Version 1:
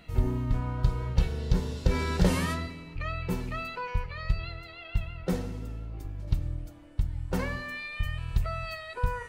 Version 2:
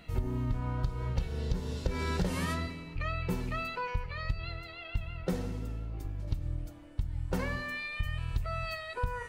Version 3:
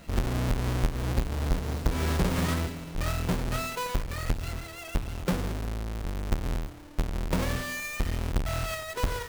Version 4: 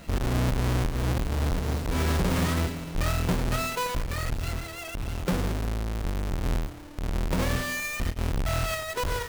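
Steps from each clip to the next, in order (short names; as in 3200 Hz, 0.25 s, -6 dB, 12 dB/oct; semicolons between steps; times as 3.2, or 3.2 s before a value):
compressor 6:1, threshold -27 dBFS, peak gain reduction 10.5 dB
half-waves squared off
limiter -24 dBFS, peak gain reduction 31 dB; gain +3.5 dB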